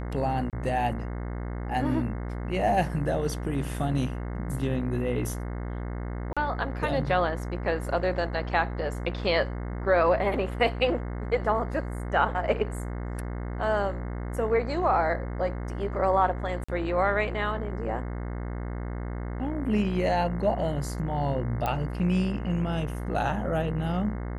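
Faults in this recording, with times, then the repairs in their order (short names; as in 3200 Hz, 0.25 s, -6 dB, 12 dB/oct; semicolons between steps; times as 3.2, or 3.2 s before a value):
buzz 60 Hz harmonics 36 -33 dBFS
0.5–0.53 gap 28 ms
6.33–6.37 gap 36 ms
16.64–16.68 gap 45 ms
21.66 pop -15 dBFS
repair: de-click; de-hum 60 Hz, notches 36; interpolate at 0.5, 28 ms; interpolate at 6.33, 36 ms; interpolate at 16.64, 45 ms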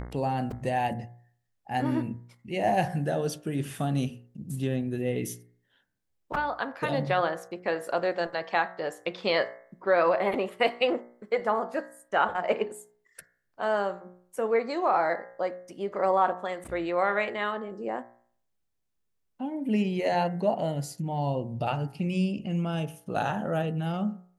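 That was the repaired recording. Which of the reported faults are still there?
21.66 pop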